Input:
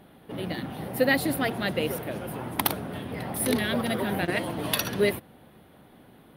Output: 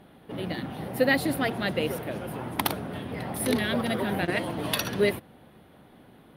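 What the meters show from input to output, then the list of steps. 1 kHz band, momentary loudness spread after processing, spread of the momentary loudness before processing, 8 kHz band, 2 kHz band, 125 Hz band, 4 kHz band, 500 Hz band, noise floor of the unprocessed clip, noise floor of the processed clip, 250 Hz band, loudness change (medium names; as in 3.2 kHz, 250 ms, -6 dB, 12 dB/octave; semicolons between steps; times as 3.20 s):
0.0 dB, 11 LU, 11 LU, -3.0 dB, 0.0 dB, 0.0 dB, -0.5 dB, 0.0 dB, -54 dBFS, -54 dBFS, 0.0 dB, -0.5 dB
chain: treble shelf 12 kHz -8.5 dB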